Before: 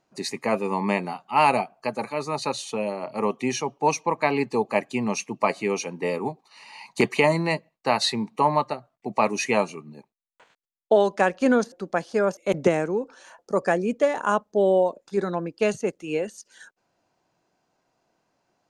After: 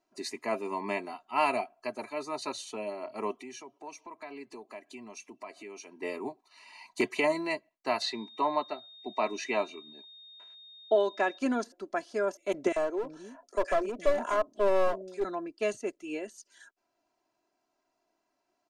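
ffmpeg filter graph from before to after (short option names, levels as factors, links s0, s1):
-filter_complex "[0:a]asettb=1/sr,asplit=3[s0][s1][s2];[s0]atrim=end=3.414[s3];[s1]atrim=start=3.41:end=6.02,asetpts=PTS-STARTPTS,afade=t=in:d=0.004:c=qsin,afade=t=out:st=2.606:d=0.004:c=qsin,highpass=130,acompressor=threshold=0.0112:ratio=2.5:attack=3.2:release=140:knee=1:detection=peak[s4];[s2]atrim=start=6.016[s5];[s3][s4]acrossfade=d=0.004:c1=hsin:c2=qsin[s6];[s6][s5]acrossfade=d=0.004:c1=qsin:c2=hsin,asettb=1/sr,asplit=3[s7][s8][s9];[s7]atrim=end=8.024[s10];[s8]atrim=start=8.02:end=11.38,asetpts=PTS-STARTPTS,afade=t=in:d=0.004:c=qsin,afade=t=out:st=3.356:d=0.004:c=qsin,aeval=exprs='val(0)+0.00631*sin(2*PI*3700*n/s)':c=same,highpass=170,lowpass=5200[s11];[s9]atrim=start=11.376[s12];[s10][s11]acrossfade=d=0.004:c1=hsin:c2=qsin[s13];[s13][s12]acrossfade=d=0.004:c1=qsin:c2=hsin,asettb=1/sr,asplit=3[s14][s15][s16];[s14]atrim=end=12.724[s17];[s15]atrim=start=12.72:end=15.25,asetpts=PTS-STARTPTS,afade=t=in:d=0.004:c=qsin,afade=t=out:st=2.526:d=0.004:c=qsin,equalizer=f=580:t=o:w=0.82:g=7.5,acrossover=split=240|1800[s18][s19][s20];[s19]adelay=40[s21];[s18]adelay=310[s22];[s22][s21][s20]amix=inputs=3:normalize=0,atrim=end_sample=111573,aeval=exprs='clip(val(0),-1,0.0841)':c=same[s23];[s16]atrim=start=15.246[s24];[s17][s23]acrossfade=d=0.004:c1=hsin:c2=qsin[s25];[s25][s24]acrossfade=d=0.004:c1=qsin:c2=hsin,equalizer=f=65:w=0.9:g=-14,aecho=1:1:3:0.74,volume=0.355"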